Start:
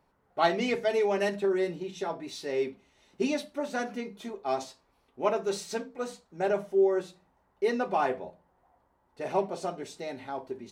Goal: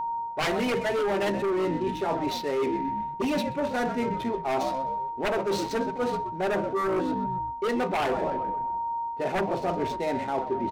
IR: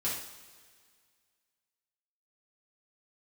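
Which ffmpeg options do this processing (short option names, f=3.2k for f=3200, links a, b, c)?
-filter_complex "[0:a]aemphasis=mode=reproduction:type=cd,asplit=2[a][b];[b]asplit=5[c][d][e][f][g];[c]adelay=129,afreqshift=-64,volume=-14dB[h];[d]adelay=258,afreqshift=-128,volume=-20.4dB[i];[e]adelay=387,afreqshift=-192,volume=-26.8dB[j];[f]adelay=516,afreqshift=-256,volume=-33.1dB[k];[g]adelay=645,afreqshift=-320,volume=-39.5dB[l];[h][i][j][k][l]amix=inputs=5:normalize=0[m];[a][m]amix=inputs=2:normalize=0,aeval=exprs='0.237*sin(PI/2*3.55*val(0)/0.237)':c=same,adynamicsmooth=sensitivity=7.5:basefreq=1.1k,aeval=exprs='val(0)+0.0447*sin(2*PI*930*n/s)':c=same,areverse,acompressor=threshold=-25dB:ratio=6,areverse"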